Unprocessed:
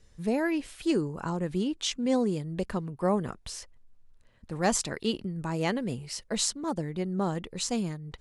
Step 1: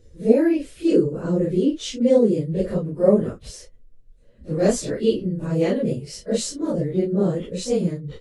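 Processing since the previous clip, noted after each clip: phase scrambler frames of 0.1 s; resonant low shelf 670 Hz +7.5 dB, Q 3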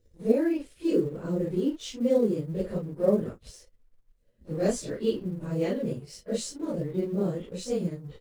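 G.711 law mismatch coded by A; gain -7 dB

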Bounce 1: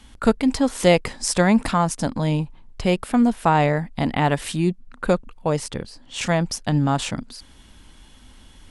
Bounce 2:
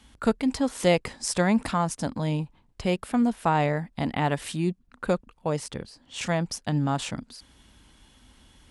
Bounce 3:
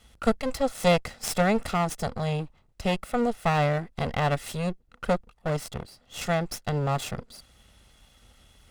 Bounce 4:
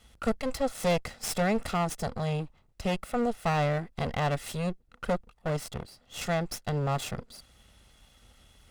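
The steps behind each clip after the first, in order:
HPF 41 Hz; gain -5.5 dB
minimum comb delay 1.5 ms
soft clip -17.5 dBFS, distortion -15 dB; gain -1.5 dB

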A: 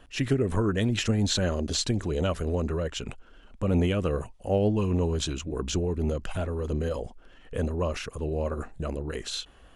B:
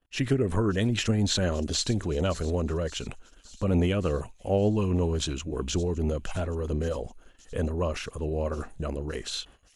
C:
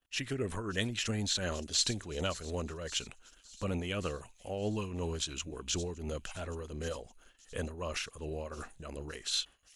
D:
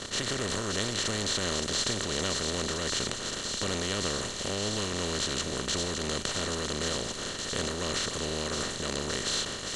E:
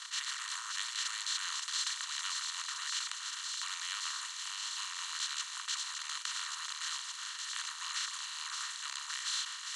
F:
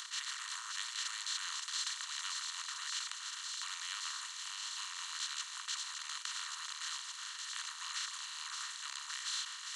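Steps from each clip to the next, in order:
gate -49 dBFS, range -30 dB; thin delay 0.568 s, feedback 65%, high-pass 5400 Hz, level -13 dB
tremolo triangle 2.8 Hz, depth 60%; tilt shelf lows -6 dB, about 1100 Hz; gain -3 dB
per-bin compression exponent 0.2; notch 2500 Hz, Q 8.5; gain -4.5 dB
steep high-pass 950 Hz 72 dB/oct; gain -5 dB
upward compressor, threshold -40 dBFS; gain -3 dB

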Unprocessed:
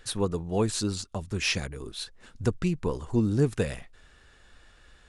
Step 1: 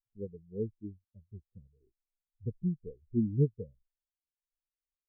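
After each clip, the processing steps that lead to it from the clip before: steep low-pass 580 Hz 36 dB/oct; spectral expander 2.5:1; gain -2 dB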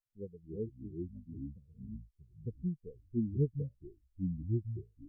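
echoes that change speed 0.233 s, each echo -4 st, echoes 3; gain -4 dB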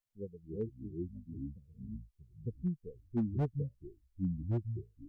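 hard clip -27.5 dBFS, distortion -13 dB; gain +1 dB

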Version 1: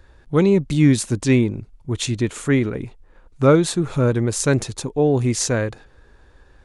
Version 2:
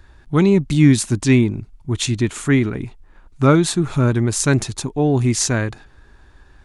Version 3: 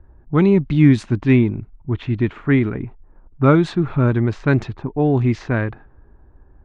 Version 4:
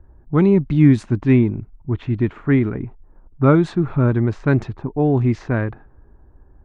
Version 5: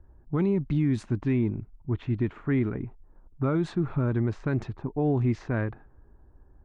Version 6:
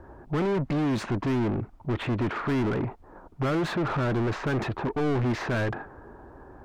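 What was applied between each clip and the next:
bell 500 Hz -11 dB 0.39 oct; gain +3 dB
LPF 2600 Hz 12 dB/oct; low-pass opened by the level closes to 680 Hz, open at -10 dBFS
bell 3400 Hz -6 dB 1.9 oct
limiter -10.5 dBFS, peak gain reduction 8.5 dB; gain -6.5 dB
overdrive pedal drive 34 dB, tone 1500 Hz, clips at -16.5 dBFS; gain -3 dB

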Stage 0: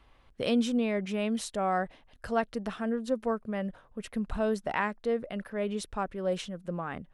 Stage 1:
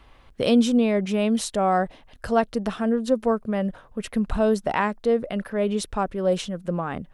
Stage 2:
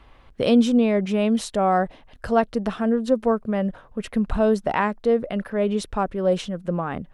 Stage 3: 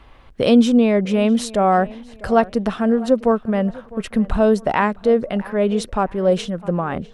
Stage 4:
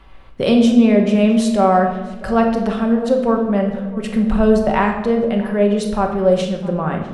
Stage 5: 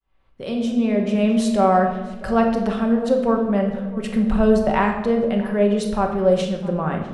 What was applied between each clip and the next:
dynamic EQ 1900 Hz, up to -5 dB, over -46 dBFS, Q 1.1; gain +8.5 dB
high shelf 4600 Hz -7 dB; gain +1.5 dB
tape echo 0.653 s, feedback 37%, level -19 dB, low-pass 3100 Hz; gain +4 dB
shoebox room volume 610 m³, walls mixed, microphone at 1.1 m; gain -1 dB
opening faded in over 1.57 s; gain -2.5 dB

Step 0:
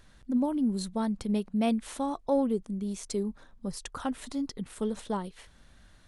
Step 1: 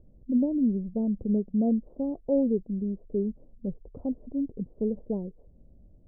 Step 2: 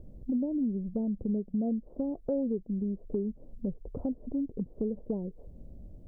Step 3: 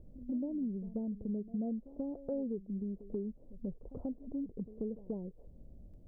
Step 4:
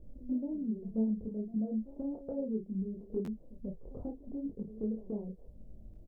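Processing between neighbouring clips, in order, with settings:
steep low-pass 580 Hz 36 dB/oct; gain +3 dB
compressor 3:1, threshold -40 dBFS, peak gain reduction 14.5 dB; gain +7.5 dB
reverse echo 0.136 s -16 dB; gain -6.5 dB
chorus voices 4, 1.2 Hz, delay 21 ms, depth 3 ms; doubler 32 ms -6 dB; stuck buffer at 3.24, samples 512, times 2; gain +3 dB

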